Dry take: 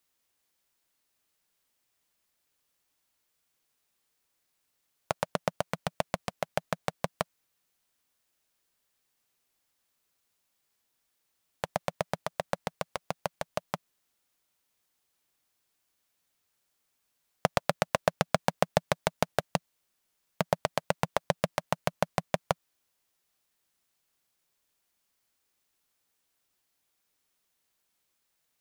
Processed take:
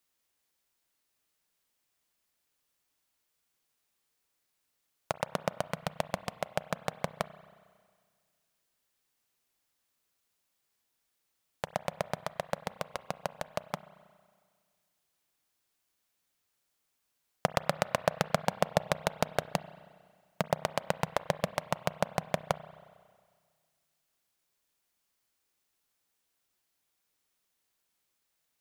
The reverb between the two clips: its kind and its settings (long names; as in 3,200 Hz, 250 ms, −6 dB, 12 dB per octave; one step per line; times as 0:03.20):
spring reverb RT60 1.8 s, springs 32/45 ms, chirp 30 ms, DRR 15 dB
level −2 dB